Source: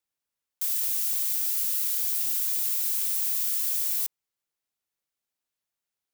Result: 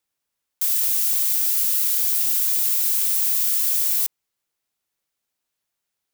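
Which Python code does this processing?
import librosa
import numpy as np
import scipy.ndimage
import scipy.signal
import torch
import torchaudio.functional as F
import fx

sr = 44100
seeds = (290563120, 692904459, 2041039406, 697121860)

y = fx.quant_companded(x, sr, bits=8, at=(0.67, 2.23))
y = F.gain(torch.from_numpy(y), 6.5).numpy()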